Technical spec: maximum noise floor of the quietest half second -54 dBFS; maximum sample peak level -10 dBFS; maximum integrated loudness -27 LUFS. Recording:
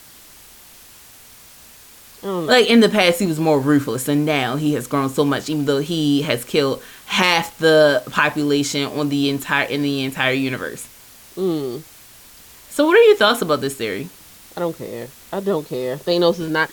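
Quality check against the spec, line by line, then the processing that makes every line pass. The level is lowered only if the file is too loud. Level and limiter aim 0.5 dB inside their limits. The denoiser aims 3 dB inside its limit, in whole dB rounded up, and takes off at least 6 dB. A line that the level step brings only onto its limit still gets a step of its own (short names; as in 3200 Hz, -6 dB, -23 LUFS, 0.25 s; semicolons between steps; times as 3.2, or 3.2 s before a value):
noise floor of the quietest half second -44 dBFS: fail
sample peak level -3.0 dBFS: fail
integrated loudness -18.0 LUFS: fail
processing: denoiser 6 dB, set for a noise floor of -44 dBFS; gain -9.5 dB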